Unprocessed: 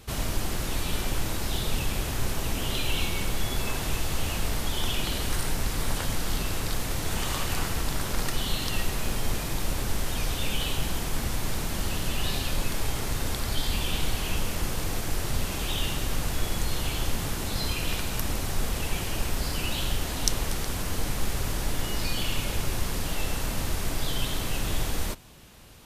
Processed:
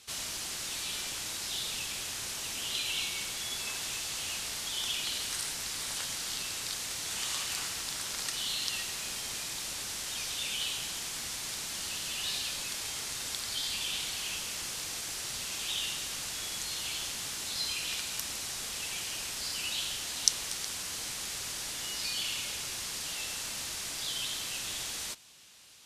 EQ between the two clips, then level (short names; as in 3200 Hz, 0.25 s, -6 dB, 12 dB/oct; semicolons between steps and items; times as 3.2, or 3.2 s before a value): LPF 6600 Hz 12 dB/oct; differentiator; low shelf 270 Hz +10.5 dB; +6.0 dB